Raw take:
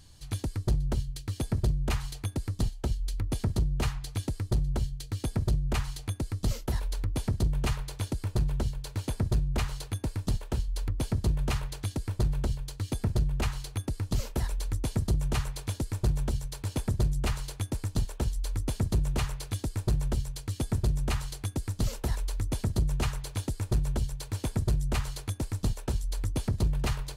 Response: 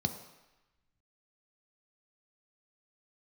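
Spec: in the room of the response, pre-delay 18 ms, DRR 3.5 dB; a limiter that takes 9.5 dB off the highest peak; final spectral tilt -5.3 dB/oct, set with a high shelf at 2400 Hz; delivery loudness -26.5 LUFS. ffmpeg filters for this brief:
-filter_complex "[0:a]highshelf=f=2.4k:g=7.5,alimiter=level_in=2dB:limit=-24dB:level=0:latency=1,volume=-2dB,asplit=2[a][b];[1:a]atrim=start_sample=2205,adelay=18[c];[b][c]afir=irnorm=-1:irlink=0,volume=-7.5dB[d];[a][d]amix=inputs=2:normalize=0,volume=5dB"

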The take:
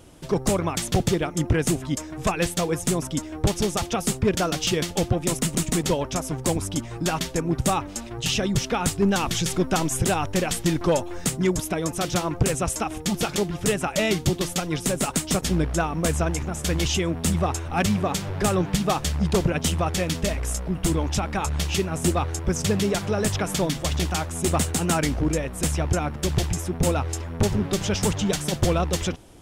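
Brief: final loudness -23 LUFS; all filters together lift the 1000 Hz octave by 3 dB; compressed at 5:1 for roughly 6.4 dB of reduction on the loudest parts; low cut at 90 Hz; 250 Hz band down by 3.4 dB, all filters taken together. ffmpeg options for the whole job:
-af "highpass=90,equalizer=f=250:t=o:g=-5.5,equalizer=f=1k:t=o:g=4.5,acompressor=threshold=-25dB:ratio=5,volume=6.5dB"

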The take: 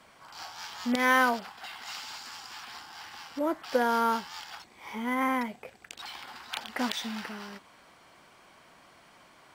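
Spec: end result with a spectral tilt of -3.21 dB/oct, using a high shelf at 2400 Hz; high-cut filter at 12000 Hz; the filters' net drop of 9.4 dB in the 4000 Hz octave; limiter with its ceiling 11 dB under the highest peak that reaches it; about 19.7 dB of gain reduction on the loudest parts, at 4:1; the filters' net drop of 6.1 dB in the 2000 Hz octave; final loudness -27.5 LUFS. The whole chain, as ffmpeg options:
-af "lowpass=12k,equalizer=f=2k:t=o:g=-5,highshelf=f=2.4k:g=-4.5,equalizer=f=4k:t=o:g=-6.5,acompressor=threshold=-46dB:ratio=4,volume=25dB,alimiter=limit=-17dB:level=0:latency=1"

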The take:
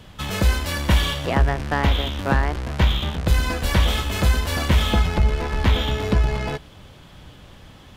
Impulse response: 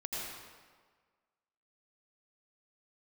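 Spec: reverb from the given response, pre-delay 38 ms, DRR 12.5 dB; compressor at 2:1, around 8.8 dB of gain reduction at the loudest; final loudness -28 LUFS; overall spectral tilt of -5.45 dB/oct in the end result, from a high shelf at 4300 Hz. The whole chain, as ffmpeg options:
-filter_complex "[0:a]highshelf=f=4.3k:g=-3.5,acompressor=threshold=-29dB:ratio=2,asplit=2[a][b];[1:a]atrim=start_sample=2205,adelay=38[c];[b][c]afir=irnorm=-1:irlink=0,volume=-15dB[d];[a][d]amix=inputs=2:normalize=0,volume=0.5dB"

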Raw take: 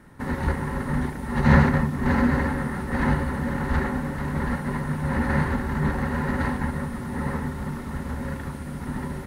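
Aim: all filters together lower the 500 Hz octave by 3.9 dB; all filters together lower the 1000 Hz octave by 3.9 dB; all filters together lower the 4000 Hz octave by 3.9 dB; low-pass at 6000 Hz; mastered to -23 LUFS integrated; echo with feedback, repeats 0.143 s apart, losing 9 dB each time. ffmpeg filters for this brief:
-af "lowpass=6k,equalizer=f=500:t=o:g=-4,equalizer=f=1k:t=o:g=-3.5,equalizer=f=4k:t=o:g=-4,aecho=1:1:143|286|429|572:0.355|0.124|0.0435|0.0152,volume=3dB"

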